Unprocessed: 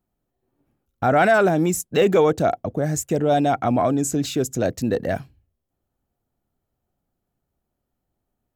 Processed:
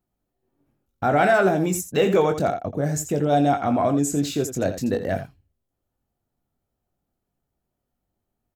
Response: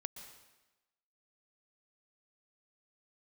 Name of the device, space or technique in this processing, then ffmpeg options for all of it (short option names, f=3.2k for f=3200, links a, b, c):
slapback doubling: -filter_complex "[0:a]asplit=3[a][b][c];[b]adelay=21,volume=-7dB[d];[c]adelay=84,volume=-10.5dB[e];[a][d][e]amix=inputs=3:normalize=0,volume=-2.5dB"